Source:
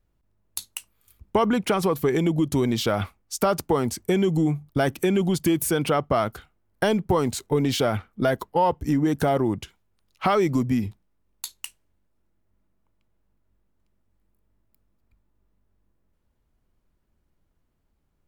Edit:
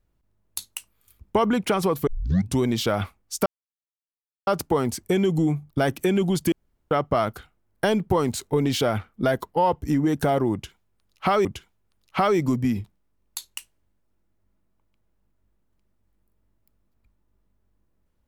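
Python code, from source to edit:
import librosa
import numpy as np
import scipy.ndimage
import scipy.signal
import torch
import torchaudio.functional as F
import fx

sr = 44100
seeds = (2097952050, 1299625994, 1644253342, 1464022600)

y = fx.edit(x, sr, fx.tape_start(start_s=2.07, length_s=0.52),
    fx.insert_silence(at_s=3.46, length_s=1.01),
    fx.room_tone_fill(start_s=5.51, length_s=0.39),
    fx.repeat(start_s=9.52, length_s=0.92, count=2), tone=tone)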